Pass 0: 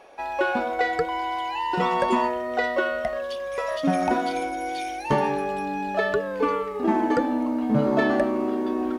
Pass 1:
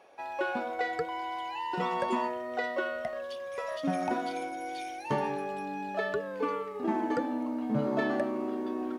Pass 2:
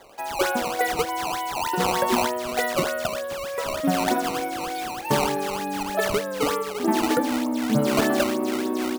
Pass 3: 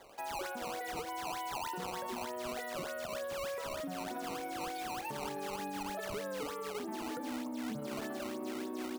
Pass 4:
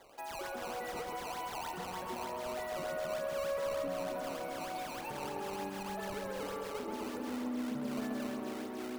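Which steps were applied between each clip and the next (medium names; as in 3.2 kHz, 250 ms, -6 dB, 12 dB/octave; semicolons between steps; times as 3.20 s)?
high-pass 76 Hz 24 dB/octave; trim -8 dB
decimation with a swept rate 15×, swing 160% 3.3 Hz; trim +8 dB
compression, threshold -25 dBFS, peak gain reduction 9.5 dB; peak limiter -26 dBFS, peak gain reduction 10.5 dB; trim -7 dB
filtered feedback delay 133 ms, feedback 80%, low-pass 2.7 kHz, level -4 dB; trim -2.5 dB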